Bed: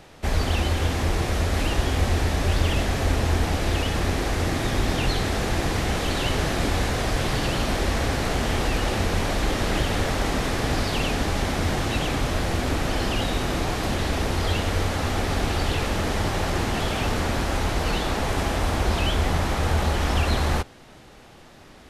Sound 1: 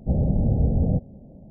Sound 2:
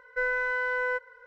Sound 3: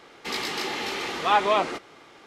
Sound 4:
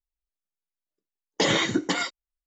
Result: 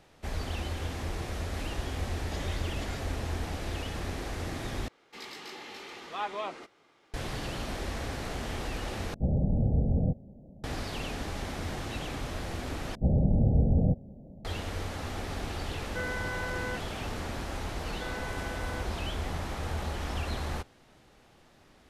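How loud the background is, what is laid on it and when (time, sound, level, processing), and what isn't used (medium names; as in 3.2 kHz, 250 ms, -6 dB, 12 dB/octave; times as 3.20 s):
bed -11.5 dB
0.92 s: add 4 -16 dB + random-step tremolo
4.88 s: replace with 3 -14 dB
9.14 s: replace with 1 -5.5 dB
12.95 s: replace with 1 -3 dB
15.79 s: add 2 -8.5 dB
17.84 s: add 2 -14.5 dB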